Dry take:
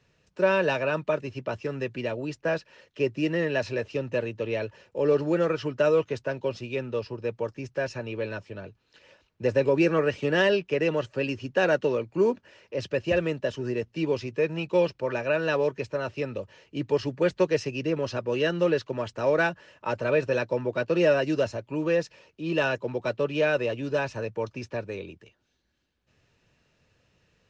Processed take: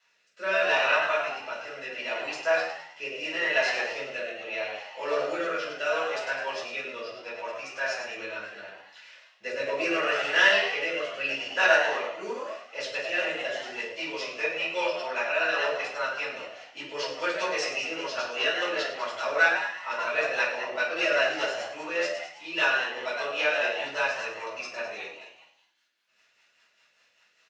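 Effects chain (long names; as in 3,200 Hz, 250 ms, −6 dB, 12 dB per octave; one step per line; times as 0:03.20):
high-pass filter 1,100 Hz 12 dB per octave
echo with shifted repeats 103 ms, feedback 52%, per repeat +84 Hz, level −6.5 dB
rotating-speaker cabinet horn 0.75 Hz, later 5 Hz, at 0:12.04
rectangular room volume 440 cubic metres, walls furnished, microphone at 6.9 metres
level −1.5 dB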